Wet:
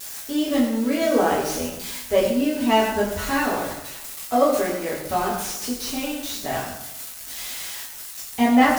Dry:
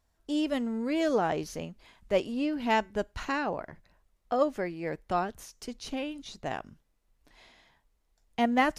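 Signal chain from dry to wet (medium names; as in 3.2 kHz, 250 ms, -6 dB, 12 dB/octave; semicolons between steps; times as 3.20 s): zero-crossing glitches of -27.5 dBFS; reverberation RT60 0.95 s, pre-delay 6 ms, DRR -7 dB; slew-rate limiter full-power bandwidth 340 Hz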